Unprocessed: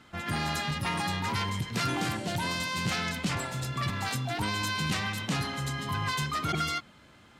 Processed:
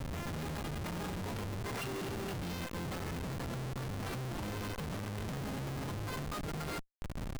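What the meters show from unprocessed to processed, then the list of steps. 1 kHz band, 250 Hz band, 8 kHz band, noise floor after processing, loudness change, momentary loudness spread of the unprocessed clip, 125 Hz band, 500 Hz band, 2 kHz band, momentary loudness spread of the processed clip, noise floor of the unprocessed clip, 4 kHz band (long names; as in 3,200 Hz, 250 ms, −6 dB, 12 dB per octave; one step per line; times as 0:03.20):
−11.0 dB, −6.0 dB, −10.0 dB, −42 dBFS, −9.0 dB, 3 LU, −6.0 dB, −2.5 dB, −12.5 dB, 1 LU, −56 dBFS, −14.0 dB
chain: time-frequency box erased 0:01.80–0:02.62, 420–2,600 Hz
hum with harmonics 400 Hz, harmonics 19, −52 dBFS −6 dB per octave
downward compressor 16 to 1, threshold −43 dBFS, peak gain reduction 18.5 dB
gain on a spectral selection 0:01.64–0:02.33, 370–2,900 Hz +12 dB
comparator with hysteresis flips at −44 dBFS
level +8 dB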